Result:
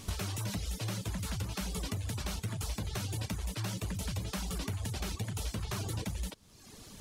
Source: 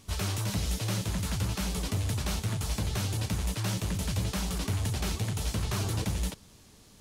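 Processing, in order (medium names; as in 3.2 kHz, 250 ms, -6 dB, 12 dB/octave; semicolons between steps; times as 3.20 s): reverb removal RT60 0.88 s; compression 12:1, threshold -41 dBFS, peak gain reduction 15 dB; trim +8 dB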